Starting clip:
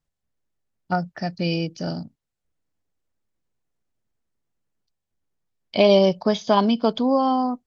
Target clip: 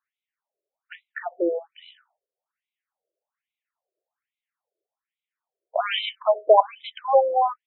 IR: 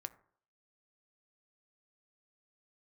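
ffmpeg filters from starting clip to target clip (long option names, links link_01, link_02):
-filter_complex "[0:a]asoftclip=type=hard:threshold=-11dB,asplit=2[link_01][link_02];[1:a]atrim=start_sample=2205,afade=type=out:start_time=0.2:duration=0.01,atrim=end_sample=9261,lowpass=3000[link_03];[link_02][link_03]afir=irnorm=-1:irlink=0,volume=-8dB[link_04];[link_01][link_04]amix=inputs=2:normalize=0,afftfilt=real='re*between(b*sr/1024,470*pow(2900/470,0.5+0.5*sin(2*PI*1.2*pts/sr))/1.41,470*pow(2900/470,0.5+0.5*sin(2*PI*1.2*pts/sr))*1.41)':imag='im*between(b*sr/1024,470*pow(2900/470,0.5+0.5*sin(2*PI*1.2*pts/sr))/1.41,470*pow(2900/470,0.5+0.5*sin(2*PI*1.2*pts/sr))*1.41)':win_size=1024:overlap=0.75,volume=5.5dB"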